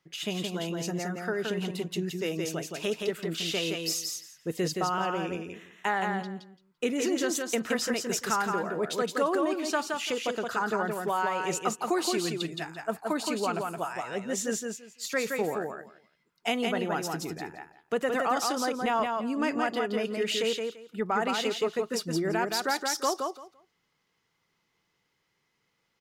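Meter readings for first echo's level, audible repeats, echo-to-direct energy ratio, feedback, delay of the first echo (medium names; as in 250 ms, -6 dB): -4.0 dB, 3, -4.0 dB, 18%, 170 ms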